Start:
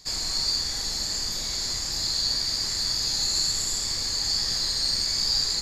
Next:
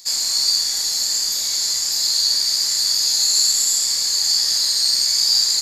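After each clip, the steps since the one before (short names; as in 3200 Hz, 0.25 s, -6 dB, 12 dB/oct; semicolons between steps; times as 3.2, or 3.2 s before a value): RIAA curve recording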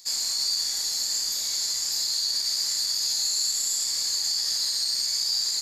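limiter -10 dBFS, peak gain reduction 4.5 dB; gain -6.5 dB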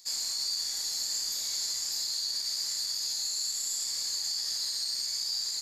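vocal rider; gain -6 dB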